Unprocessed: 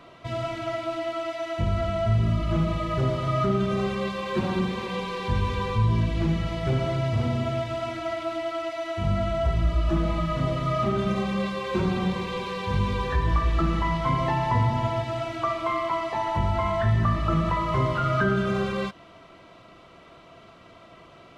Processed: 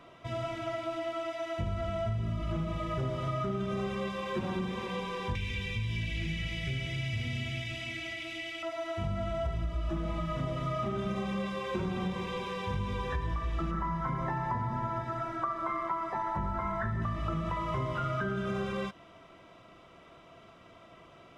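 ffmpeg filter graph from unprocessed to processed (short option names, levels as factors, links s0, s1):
-filter_complex "[0:a]asettb=1/sr,asplit=3[s0][s1][s2];[s0]atrim=end=5.354[s3];[s1]atrim=start=5.35:end=8.63,asetpts=PTS-STARTPTS,afade=t=in:d=0.004:c=qsin,afade=t=out:st=3.276:d=0.004:c=qsin,acrossover=split=140|310|1700[s4][s5][s6][s7];[s4]acompressor=threshold=0.0501:ratio=3[s8];[s5]acompressor=threshold=0.0126:ratio=3[s9];[s6]acompressor=threshold=0.00501:ratio=3[s10];[s7]acompressor=threshold=0.00251:ratio=3[s11];[s8][s9][s10][s11]amix=inputs=4:normalize=0,highshelf=f=1600:t=q:w=3:g=11.5[s12];[s2]atrim=start=8.626[s13];[s3][s12]acrossfade=d=0.004:c1=hsin:c2=qsin[s14];[s14][s13]acrossfade=d=0.004:c1=qsin:c2=hsin,asettb=1/sr,asplit=3[s15][s16][s17];[s15]atrim=end=13.714[s18];[s16]atrim=start=13.71:end=17.02,asetpts=PTS-STARTPTS,afade=t=in:d=0.004:c=qsin,afade=t=out:st=3.306:d=0.004:c=qsin,highshelf=f=2100:t=q:w=3:g=-7,aecho=1:1:5.3:0.49,atrim=end_sample=145971[s19];[s17]atrim=start=17.016[s20];[s18][s19]acrossfade=d=0.004:c1=hsin:c2=qsin[s21];[s21][s20]acrossfade=d=0.004:c1=qsin:c2=hsin,bandreject=f=4300:w=8.7,acompressor=threshold=0.0631:ratio=6,volume=0.562"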